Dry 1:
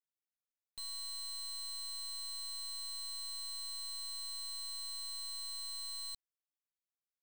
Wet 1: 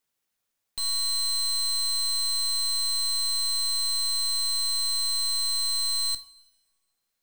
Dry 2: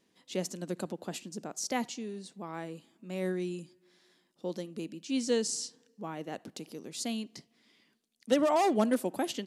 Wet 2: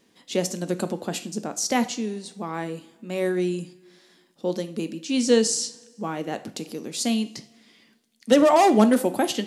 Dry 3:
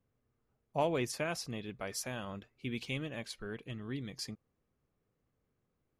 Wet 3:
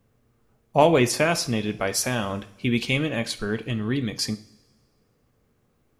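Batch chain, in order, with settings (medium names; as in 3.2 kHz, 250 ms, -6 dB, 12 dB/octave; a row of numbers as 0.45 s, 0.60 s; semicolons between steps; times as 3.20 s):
two-slope reverb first 0.41 s, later 1.6 s, from -18 dB, DRR 10 dB; normalise loudness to -24 LUFS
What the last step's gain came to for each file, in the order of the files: +14.0 dB, +9.0 dB, +14.0 dB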